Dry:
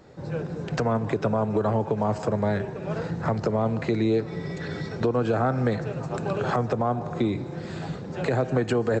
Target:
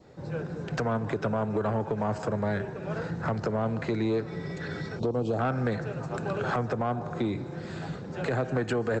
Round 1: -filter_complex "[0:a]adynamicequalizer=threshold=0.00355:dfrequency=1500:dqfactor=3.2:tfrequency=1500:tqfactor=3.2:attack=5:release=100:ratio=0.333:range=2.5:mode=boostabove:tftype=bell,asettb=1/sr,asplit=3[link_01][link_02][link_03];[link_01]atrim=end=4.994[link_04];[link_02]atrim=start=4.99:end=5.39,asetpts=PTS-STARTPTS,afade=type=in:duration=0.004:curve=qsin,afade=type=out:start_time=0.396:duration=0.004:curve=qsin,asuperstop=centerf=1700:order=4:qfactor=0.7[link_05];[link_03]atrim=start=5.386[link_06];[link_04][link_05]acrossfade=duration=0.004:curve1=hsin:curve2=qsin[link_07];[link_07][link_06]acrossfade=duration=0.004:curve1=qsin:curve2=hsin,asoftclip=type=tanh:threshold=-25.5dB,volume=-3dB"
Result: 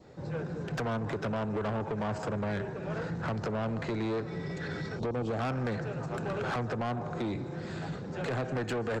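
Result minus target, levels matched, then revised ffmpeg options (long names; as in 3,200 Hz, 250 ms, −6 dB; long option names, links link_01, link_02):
soft clipping: distortion +11 dB
-filter_complex "[0:a]adynamicequalizer=threshold=0.00355:dfrequency=1500:dqfactor=3.2:tfrequency=1500:tqfactor=3.2:attack=5:release=100:ratio=0.333:range=2.5:mode=boostabove:tftype=bell,asettb=1/sr,asplit=3[link_01][link_02][link_03];[link_01]atrim=end=4.994[link_04];[link_02]atrim=start=4.99:end=5.39,asetpts=PTS-STARTPTS,afade=type=in:duration=0.004:curve=qsin,afade=type=out:start_time=0.396:duration=0.004:curve=qsin,asuperstop=centerf=1700:order=4:qfactor=0.7[link_05];[link_03]atrim=start=5.386[link_06];[link_04][link_05]acrossfade=duration=0.004:curve1=hsin:curve2=qsin[link_07];[link_07][link_06]acrossfade=duration=0.004:curve1=qsin:curve2=hsin,asoftclip=type=tanh:threshold=-16dB,volume=-3dB"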